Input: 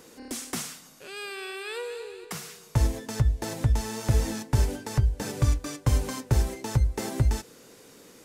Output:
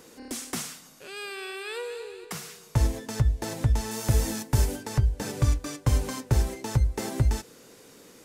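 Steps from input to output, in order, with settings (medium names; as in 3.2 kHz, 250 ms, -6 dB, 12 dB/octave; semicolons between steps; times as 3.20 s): 3.91–4.83 s: treble shelf 7.9 kHz +9 dB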